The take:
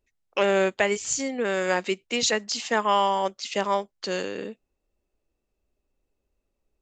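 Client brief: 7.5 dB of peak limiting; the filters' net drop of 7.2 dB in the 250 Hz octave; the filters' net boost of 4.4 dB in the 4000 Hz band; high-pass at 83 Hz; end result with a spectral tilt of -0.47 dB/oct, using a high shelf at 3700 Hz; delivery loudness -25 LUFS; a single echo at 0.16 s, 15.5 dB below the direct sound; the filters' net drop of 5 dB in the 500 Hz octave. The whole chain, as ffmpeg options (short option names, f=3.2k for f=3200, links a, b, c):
-af "highpass=83,equalizer=f=250:t=o:g=-9,equalizer=f=500:t=o:g=-4,highshelf=f=3.7k:g=3.5,equalizer=f=4k:t=o:g=3.5,alimiter=limit=-14.5dB:level=0:latency=1,aecho=1:1:160:0.168,volume=2dB"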